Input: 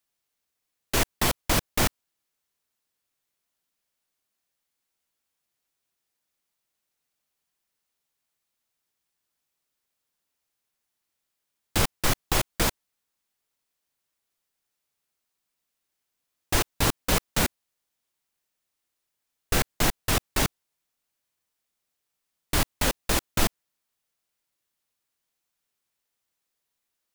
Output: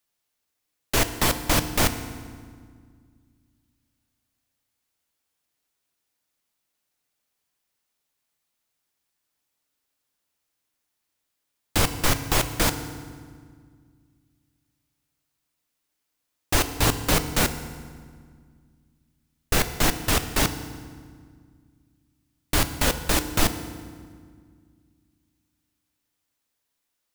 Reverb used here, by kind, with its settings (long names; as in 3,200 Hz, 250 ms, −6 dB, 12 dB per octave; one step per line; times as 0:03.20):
feedback delay network reverb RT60 1.8 s, low-frequency decay 1.55×, high-frequency decay 0.75×, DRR 9 dB
level +2 dB